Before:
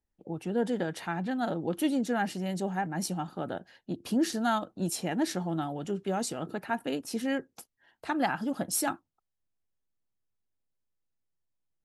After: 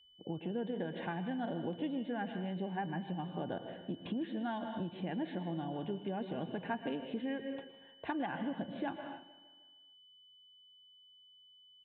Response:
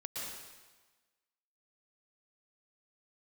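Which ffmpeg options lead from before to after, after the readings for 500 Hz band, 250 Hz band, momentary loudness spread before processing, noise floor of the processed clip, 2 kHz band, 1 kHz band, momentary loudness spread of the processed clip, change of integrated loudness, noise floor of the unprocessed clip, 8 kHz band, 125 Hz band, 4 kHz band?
-7.0 dB, -6.5 dB, 9 LU, -62 dBFS, -8.5 dB, -8.5 dB, 21 LU, -7.5 dB, -84 dBFS, under -40 dB, -5.0 dB, -8.0 dB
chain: -filter_complex "[0:a]aresample=8000,aresample=44100,asuperstop=centerf=1300:order=8:qfactor=7,aemphasis=mode=reproduction:type=bsi,asplit=2[s0][s1];[1:a]atrim=start_sample=2205,afade=t=out:st=0.35:d=0.01,atrim=end_sample=15876[s2];[s1][s2]afir=irnorm=-1:irlink=0,volume=0.422[s3];[s0][s3]amix=inputs=2:normalize=0,acompressor=threshold=0.0316:ratio=6,aeval=exprs='val(0)+0.00112*sin(2*PI*3000*n/s)':c=same,highpass=f=250:p=1,aecho=1:1:155|310|465|620|775:0.15|0.0778|0.0405|0.021|0.0109,volume=0.75"

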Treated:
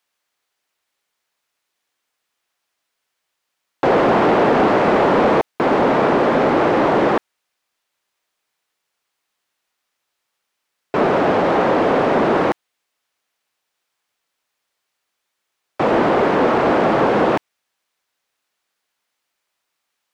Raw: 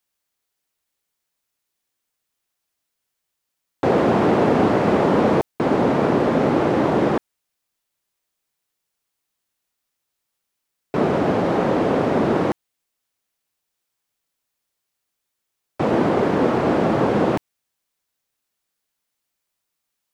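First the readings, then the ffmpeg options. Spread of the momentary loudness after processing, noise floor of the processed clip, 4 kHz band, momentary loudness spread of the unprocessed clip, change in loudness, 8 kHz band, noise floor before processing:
5 LU, -77 dBFS, +5.0 dB, 6 LU, +3.0 dB, no reading, -80 dBFS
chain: -filter_complex "[0:a]asplit=2[s0][s1];[s1]highpass=f=720:p=1,volume=5.62,asoftclip=type=tanh:threshold=0.562[s2];[s0][s2]amix=inputs=2:normalize=0,lowpass=f=2800:p=1,volume=0.501"

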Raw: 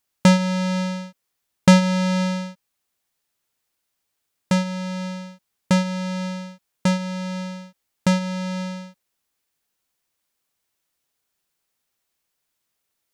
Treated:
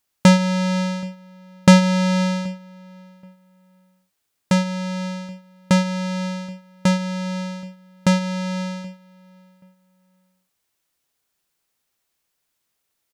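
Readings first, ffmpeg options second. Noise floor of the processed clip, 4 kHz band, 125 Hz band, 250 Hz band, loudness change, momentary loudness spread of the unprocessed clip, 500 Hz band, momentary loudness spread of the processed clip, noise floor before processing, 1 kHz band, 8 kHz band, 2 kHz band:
-76 dBFS, +2.0 dB, +2.0 dB, +2.0 dB, +2.0 dB, 18 LU, +2.0 dB, 20 LU, -78 dBFS, +2.0 dB, +2.0 dB, +2.0 dB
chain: -filter_complex "[0:a]asplit=2[s0][s1];[s1]adelay=778,lowpass=f=2400:p=1,volume=0.0631,asplit=2[s2][s3];[s3]adelay=778,lowpass=f=2400:p=1,volume=0.23[s4];[s0][s2][s4]amix=inputs=3:normalize=0,volume=1.26"

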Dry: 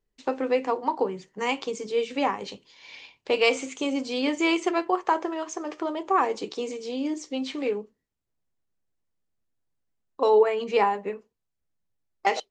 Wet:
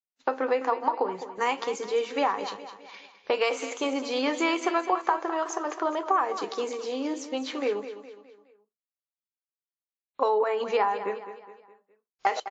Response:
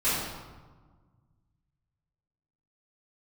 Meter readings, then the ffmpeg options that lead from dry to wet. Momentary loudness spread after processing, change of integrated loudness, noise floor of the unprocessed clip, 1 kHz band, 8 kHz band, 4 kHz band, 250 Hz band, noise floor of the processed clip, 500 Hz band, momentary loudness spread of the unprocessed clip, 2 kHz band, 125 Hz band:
15 LU, -1.5 dB, -80 dBFS, +0.5 dB, 0.0 dB, -2.5 dB, -3.5 dB, under -85 dBFS, -2.0 dB, 12 LU, -2.0 dB, no reading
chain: -filter_complex "[0:a]highpass=f=980:p=1,highshelf=f=1900:t=q:w=1.5:g=-6.5,bandreject=f=5400:w=27,agate=range=0.0224:threshold=0.00398:ratio=3:detection=peak,acompressor=threshold=0.0355:ratio=6,asplit=2[s0][s1];[s1]aecho=0:1:208|416|624|832:0.251|0.111|0.0486|0.0214[s2];[s0][s2]amix=inputs=2:normalize=0,aresample=16000,aresample=44100,volume=2.51" -ar 48000 -c:a wmav2 -b:a 64k

